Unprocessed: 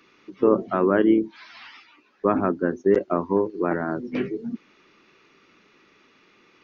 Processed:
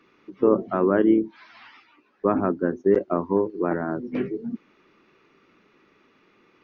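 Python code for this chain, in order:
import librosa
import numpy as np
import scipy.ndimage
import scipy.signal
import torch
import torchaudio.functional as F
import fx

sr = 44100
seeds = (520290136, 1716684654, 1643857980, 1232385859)

y = fx.high_shelf(x, sr, hz=2600.0, db=-11.0)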